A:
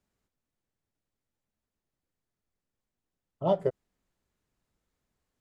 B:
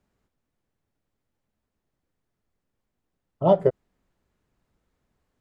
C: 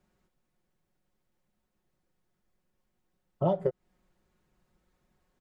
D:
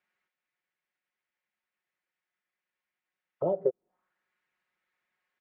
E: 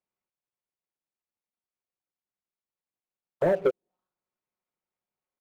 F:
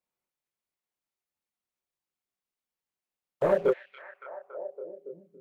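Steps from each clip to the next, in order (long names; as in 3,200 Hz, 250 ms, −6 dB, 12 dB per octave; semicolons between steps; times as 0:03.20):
high-shelf EQ 3,200 Hz −9.5 dB; level +8 dB
comb filter 5.5 ms, depth 56%; downward compressor 12 to 1, threshold −23 dBFS, peak gain reduction 13.5 dB
envelope filter 440–2,100 Hz, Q 2.1, down, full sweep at −32 dBFS; level +3.5 dB
running median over 25 samples; leveller curve on the samples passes 2
multi-voice chorus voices 2, 1.4 Hz, delay 26 ms, depth 3 ms; echo through a band-pass that steps 281 ms, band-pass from 2,600 Hz, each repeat −0.7 octaves, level −6 dB; saturating transformer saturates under 440 Hz; level +4 dB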